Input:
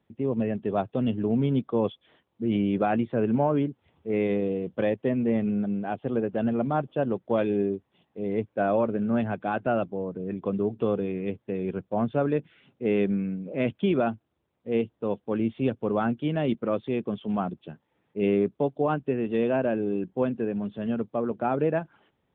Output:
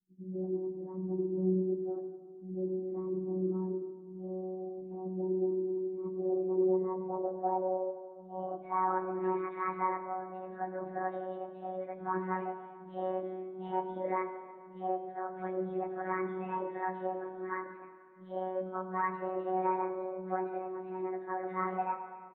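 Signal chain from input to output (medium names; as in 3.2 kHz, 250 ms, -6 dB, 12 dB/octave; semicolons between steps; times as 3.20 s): frequency-domain pitch shifter +7 st; hum notches 60/120/180/240/300/360/420/480/540/600 Hz; low-pass that closes with the level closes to 2.6 kHz, closed at -25 dBFS; robot voice 186 Hz; low-pass sweep 290 Hz -> 1.8 kHz, 5.50–9.36 s; three bands offset in time lows, highs, mids 60/140 ms, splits 250/2600 Hz; on a send at -5 dB: reverberation RT60 2.0 s, pre-delay 5 ms; on the sum: resampled via 8 kHz; trim -5.5 dB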